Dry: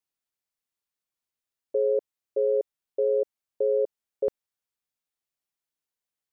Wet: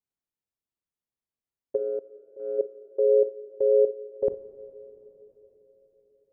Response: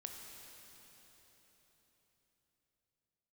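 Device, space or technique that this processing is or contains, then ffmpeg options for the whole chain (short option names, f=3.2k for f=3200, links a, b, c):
keyed gated reverb: -filter_complex "[0:a]asplit=3[a][b][c];[a]afade=t=out:st=1.76:d=0.02[d];[b]agate=range=-15dB:threshold=-21dB:ratio=16:detection=peak,afade=t=in:st=1.76:d=0.02,afade=t=out:st=2.58:d=0.02[e];[c]afade=t=in:st=2.58:d=0.02[f];[d][e][f]amix=inputs=3:normalize=0,asplit=3[g][h][i];[1:a]atrim=start_sample=2205[j];[h][j]afir=irnorm=-1:irlink=0[k];[i]apad=whole_len=278894[l];[k][l]sidechaingate=range=-9dB:threshold=-31dB:ratio=16:detection=peak,volume=7dB[m];[g][m]amix=inputs=2:normalize=0,tiltshelf=f=780:g=7,volume=-7.5dB"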